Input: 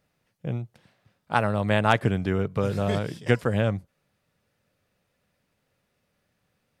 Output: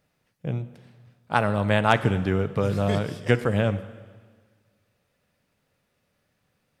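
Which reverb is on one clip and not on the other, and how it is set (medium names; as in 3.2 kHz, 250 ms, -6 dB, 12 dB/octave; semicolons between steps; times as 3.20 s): plate-style reverb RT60 1.6 s, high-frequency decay 0.95×, DRR 12.5 dB; trim +1 dB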